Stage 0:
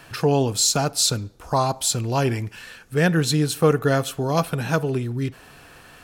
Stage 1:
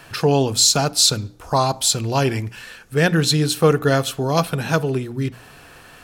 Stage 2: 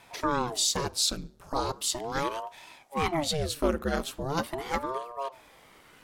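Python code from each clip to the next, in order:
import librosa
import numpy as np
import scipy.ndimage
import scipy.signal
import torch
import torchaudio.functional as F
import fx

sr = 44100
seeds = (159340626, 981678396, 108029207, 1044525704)

y1 = fx.hum_notches(x, sr, base_hz=60, count=5)
y1 = fx.dynamic_eq(y1, sr, hz=4000.0, q=1.1, threshold_db=-38.0, ratio=4.0, max_db=4)
y1 = y1 * librosa.db_to_amplitude(2.5)
y2 = fx.ring_lfo(y1, sr, carrier_hz=450.0, swing_pct=85, hz=0.39)
y2 = y2 * librosa.db_to_amplitude(-8.5)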